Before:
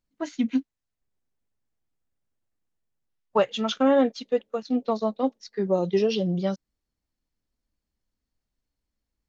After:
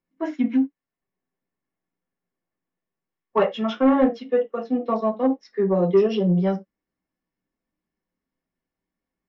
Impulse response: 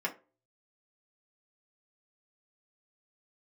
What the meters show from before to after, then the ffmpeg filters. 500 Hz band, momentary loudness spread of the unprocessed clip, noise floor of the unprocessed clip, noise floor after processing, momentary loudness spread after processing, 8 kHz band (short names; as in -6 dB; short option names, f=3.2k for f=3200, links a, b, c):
+3.0 dB, 9 LU, -85 dBFS, under -85 dBFS, 8 LU, n/a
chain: -filter_complex "[0:a]aemphasis=mode=reproduction:type=75fm[a];[1:a]atrim=start_sample=2205,atrim=end_sample=4410[b];[a][b]afir=irnorm=-1:irlink=0,acontrast=45,volume=-7dB"